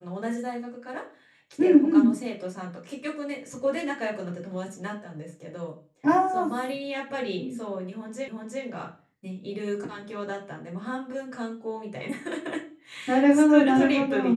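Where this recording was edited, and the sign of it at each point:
0:08.28: the same again, the last 0.36 s

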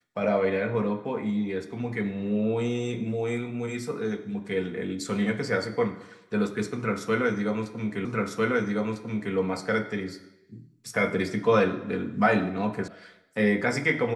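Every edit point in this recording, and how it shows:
0:08.05: the same again, the last 1.3 s
0:12.88: cut off before it has died away

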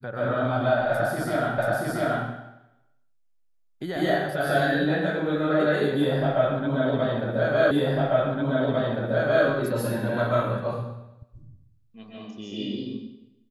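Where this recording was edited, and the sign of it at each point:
0:01.58: the same again, the last 0.68 s
0:07.71: the same again, the last 1.75 s

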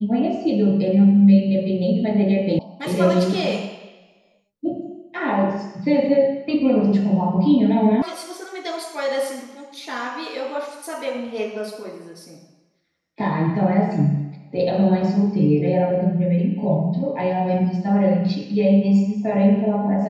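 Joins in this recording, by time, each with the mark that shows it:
0:02.59: cut off before it has died away
0:08.02: cut off before it has died away

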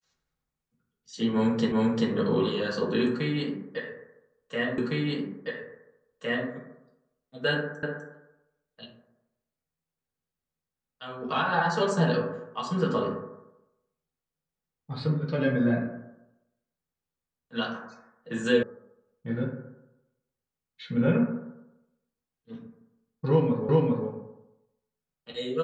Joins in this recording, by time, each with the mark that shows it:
0:01.72: the same again, the last 0.39 s
0:04.78: the same again, the last 1.71 s
0:07.83: the same again, the last 0.25 s
0:18.63: cut off before it has died away
0:23.69: the same again, the last 0.4 s

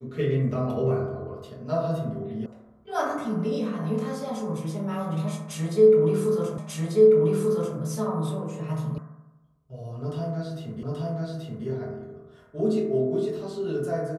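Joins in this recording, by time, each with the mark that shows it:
0:02.46: cut off before it has died away
0:06.58: the same again, the last 1.19 s
0:08.98: cut off before it has died away
0:10.83: the same again, the last 0.83 s

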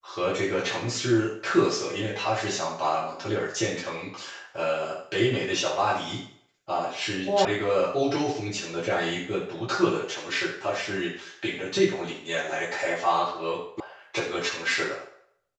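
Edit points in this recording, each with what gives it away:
0:07.45: cut off before it has died away
0:13.80: cut off before it has died away

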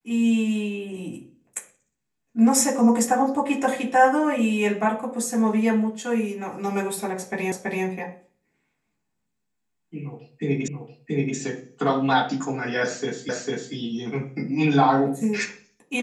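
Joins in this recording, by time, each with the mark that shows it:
0:07.52: the same again, the last 0.33 s
0:10.68: the same again, the last 0.68 s
0:13.29: the same again, the last 0.45 s

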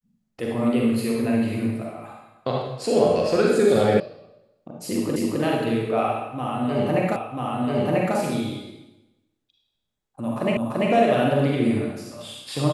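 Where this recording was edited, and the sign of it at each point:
0:04.00: cut off before it has died away
0:05.16: the same again, the last 0.26 s
0:07.16: the same again, the last 0.99 s
0:10.57: the same again, the last 0.34 s

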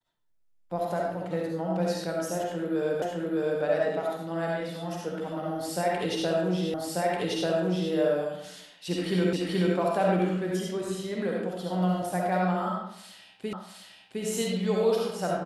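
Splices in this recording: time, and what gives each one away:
0:03.02: the same again, the last 0.61 s
0:06.74: the same again, the last 1.19 s
0:09.33: the same again, the last 0.43 s
0:13.53: the same again, the last 0.71 s

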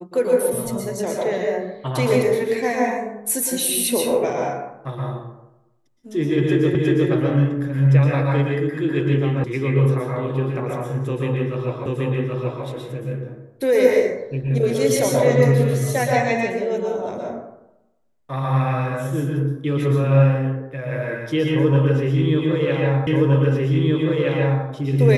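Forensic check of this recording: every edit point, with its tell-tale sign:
0:06.75: the same again, the last 0.36 s
0:09.44: cut off before it has died away
0:11.86: the same again, the last 0.78 s
0:23.07: the same again, the last 1.57 s

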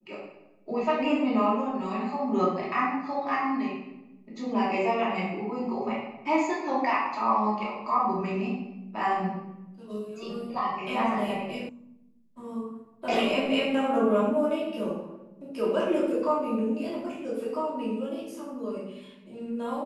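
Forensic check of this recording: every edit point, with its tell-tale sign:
0:11.69: cut off before it has died away

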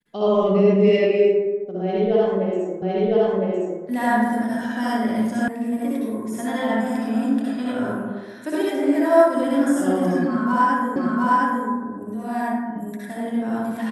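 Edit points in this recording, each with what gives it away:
0:02.82: the same again, the last 1.01 s
0:05.48: cut off before it has died away
0:10.96: the same again, the last 0.71 s

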